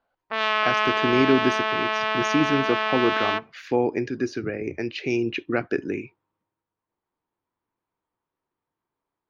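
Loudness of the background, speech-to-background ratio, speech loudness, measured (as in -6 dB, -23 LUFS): -23.5 LUFS, -2.5 dB, -26.0 LUFS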